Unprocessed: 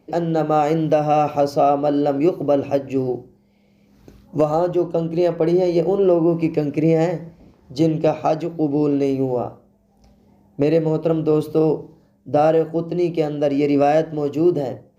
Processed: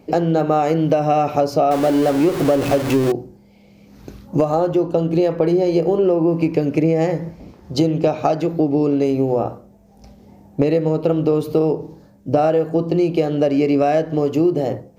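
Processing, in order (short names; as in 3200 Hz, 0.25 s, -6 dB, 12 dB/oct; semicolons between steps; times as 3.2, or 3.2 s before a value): 1.71–3.12 zero-crossing step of -22 dBFS; compressor 4:1, threshold -23 dBFS, peak gain reduction 11 dB; gain +8.5 dB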